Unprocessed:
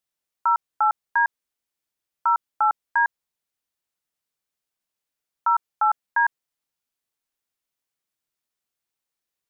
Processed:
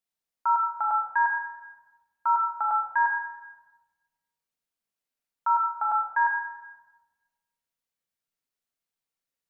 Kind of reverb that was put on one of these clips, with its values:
rectangular room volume 890 cubic metres, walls mixed, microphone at 1.7 metres
level −7 dB

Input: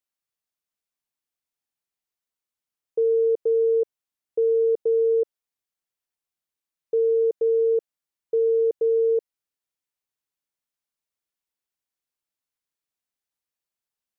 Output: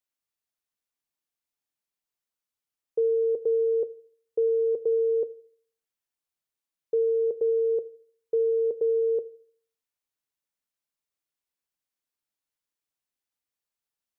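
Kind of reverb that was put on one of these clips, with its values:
feedback delay network reverb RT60 0.54 s, low-frequency decay 1.05×, high-frequency decay 0.65×, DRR 16.5 dB
level −1.5 dB

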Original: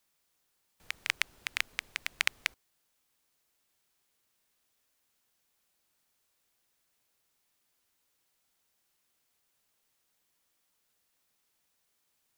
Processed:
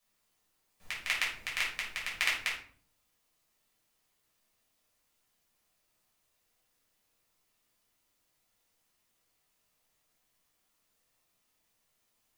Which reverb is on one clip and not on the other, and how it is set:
rectangular room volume 490 cubic metres, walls furnished, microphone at 5.9 metres
level −7 dB

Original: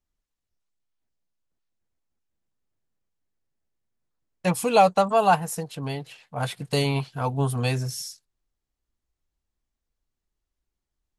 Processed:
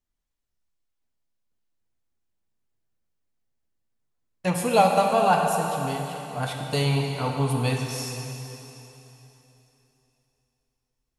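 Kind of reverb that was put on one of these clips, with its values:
dense smooth reverb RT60 3.3 s, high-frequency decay 1×, DRR 1 dB
level −2 dB

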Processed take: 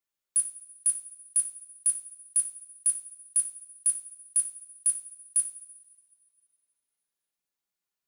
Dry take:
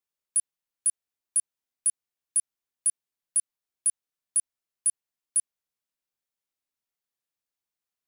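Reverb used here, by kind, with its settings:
coupled-rooms reverb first 0.45 s, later 2.2 s, from −20 dB, DRR 1.5 dB
level −1.5 dB

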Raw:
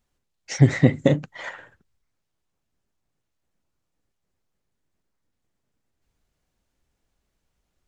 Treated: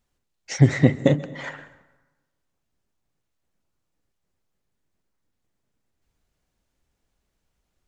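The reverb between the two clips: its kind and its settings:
dense smooth reverb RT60 1.2 s, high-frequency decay 0.6×, pre-delay 115 ms, DRR 17.5 dB

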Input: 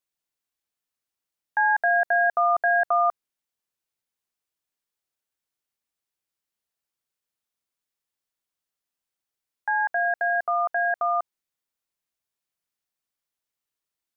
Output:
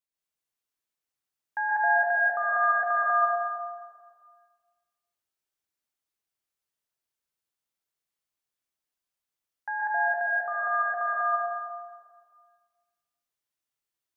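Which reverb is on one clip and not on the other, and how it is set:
dense smooth reverb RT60 1.7 s, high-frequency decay 0.85×, pre-delay 110 ms, DRR −5.5 dB
level −8 dB

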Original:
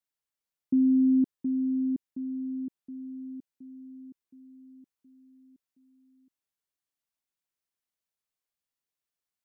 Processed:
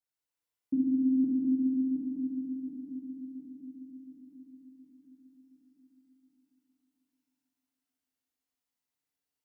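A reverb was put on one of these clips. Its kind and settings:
feedback delay network reverb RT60 3.8 s, high-frequency decay 0.75×, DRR −6.5 dB
level −6.5 dB

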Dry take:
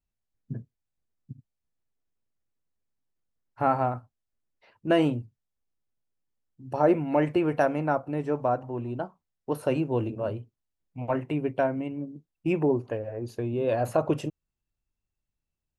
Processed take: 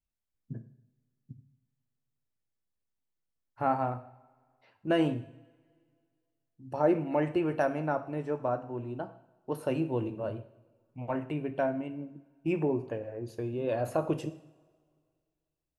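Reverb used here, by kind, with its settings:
coupled-rooms reverb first 0.64 s, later 2.1 s, from −19 dB, DRR 9.5 dB
level −5 dB

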